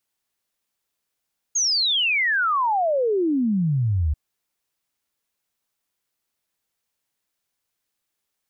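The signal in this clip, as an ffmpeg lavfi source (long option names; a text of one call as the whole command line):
ffmpeg -f lavfi -i "aevalsrc='0.126*clip(min(t,2.59-t)/0.01,0,1)*sin(2*PI*6700*2.59/log(70/6700)*(exp(log(70/6700)*t/2.59)-1))':duration=2.59:sample_rate=44100" out.wav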